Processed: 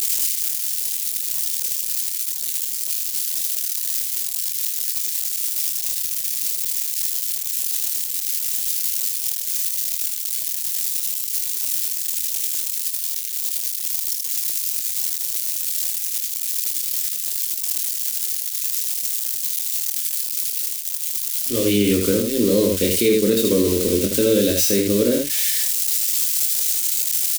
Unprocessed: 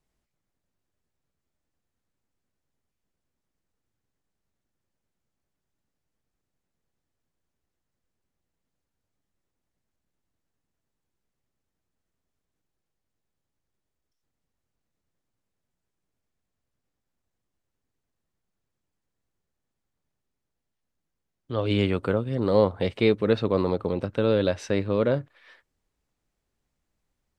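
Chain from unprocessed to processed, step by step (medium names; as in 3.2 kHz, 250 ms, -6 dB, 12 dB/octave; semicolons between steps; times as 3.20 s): zero-crossing glitches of -20.5 dBFS; peaking EQ 1.2 kHz -12 dB 1.5 oct; static phaser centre 320 Hz, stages 4; on a send: early reflections 25 ms -5 dB, 78 ms -4.5 dB; on the sum: loudness maximiser +17 dB; trim -6.5 dB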